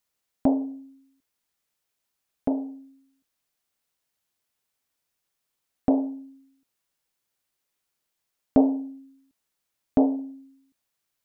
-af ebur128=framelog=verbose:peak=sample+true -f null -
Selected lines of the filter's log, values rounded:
Integrated loudness:
  I:         -26.2 LUFS
  Threshold: -38.7 LUFS
Loudness range:
  LRA:         9.7 LU
  Threshold: -52.5 LUFS
  LRA low:   -38.3 LUFS
  LRA high:  -28.6 LUFS
Sample peak:
  Peak:       -6.8 dBFS
True peak:
  Peak:       -6.8 dBFS